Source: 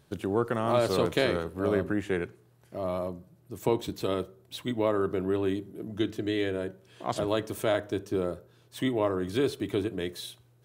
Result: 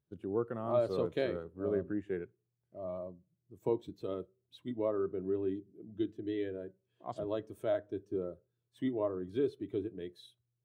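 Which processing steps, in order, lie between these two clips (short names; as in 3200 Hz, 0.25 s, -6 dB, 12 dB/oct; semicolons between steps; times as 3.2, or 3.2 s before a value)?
spectral expander 1.5:1; gain -8 dB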